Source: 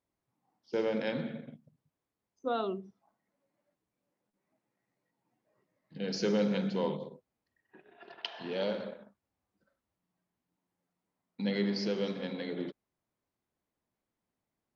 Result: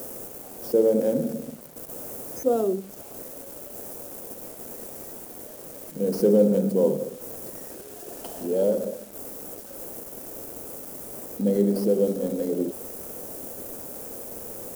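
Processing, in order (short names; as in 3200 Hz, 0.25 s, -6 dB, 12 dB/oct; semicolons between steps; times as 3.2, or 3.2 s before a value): switching spikes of -27.5 dBFS; in parallel at -7 dB: sample-rate reducer 4000 Hz; on the sum: graphic EQ 250/500/1000/2000/4000 Hz +6/+10/-8/-11/-12 dB; bit-crush 9-bit; bell 800 Hz +2 dB 1.4 oct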